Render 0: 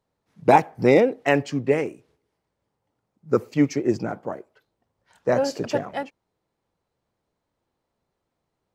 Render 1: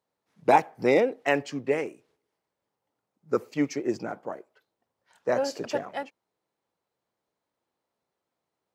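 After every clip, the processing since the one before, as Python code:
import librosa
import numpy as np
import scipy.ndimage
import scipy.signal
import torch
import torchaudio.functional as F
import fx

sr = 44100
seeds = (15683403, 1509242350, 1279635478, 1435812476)

y = fx.highpass(x, sr, hz=340.0, slope=6)
y = y * librosa.db_to_amplitude(-3.0)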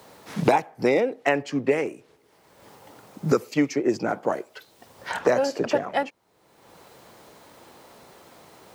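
y = fx.band_squash(x, sr, depth_pct=100)
y = y * librosa.db_to_amplitude(4.0)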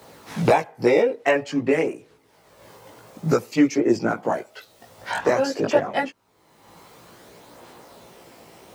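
y = fx.chorus_voices(x, sr, voices=2, hz=0.26, base_ms=18, depth_ms=1.1, mix_pct=50)
y = y * librosa.db_to_amplitude(5.5)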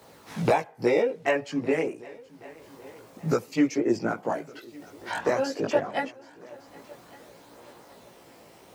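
y = fx.echo_heads(x, sr, ms=386, heads='second and third', feedback_pct=44, wet_db=-23.5)
y = y * librosa.db_to_amplitude(-5.0)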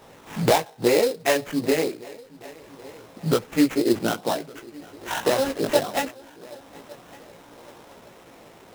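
y = fx.sample_hold(x, sr, seeds[0], rate_hz=4600.0, jitter_pct=20)
y = y * librosa.db_to_amplitude(3.5)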